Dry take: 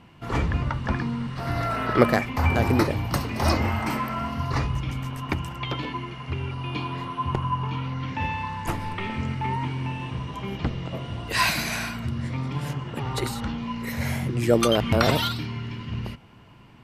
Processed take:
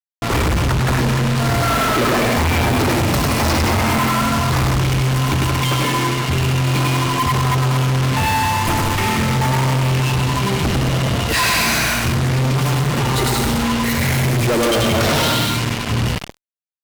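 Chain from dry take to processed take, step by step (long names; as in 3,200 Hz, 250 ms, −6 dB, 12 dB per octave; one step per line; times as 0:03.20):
bouncing-ball delay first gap 100 ms, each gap 0.75×, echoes 5
fuzz pedal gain 42 dB, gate −34 dBFS
level −1.5 dB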